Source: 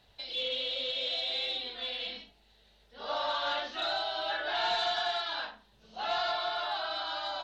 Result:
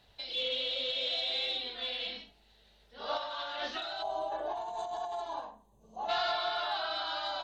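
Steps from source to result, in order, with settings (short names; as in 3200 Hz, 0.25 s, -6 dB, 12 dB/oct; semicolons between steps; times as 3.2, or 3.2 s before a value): 4.02–6.09 spectral gain 1200–6000 Hz -20 dB; 3.17–5.4 negative-ratio compressor -37 dBFS, ratio -1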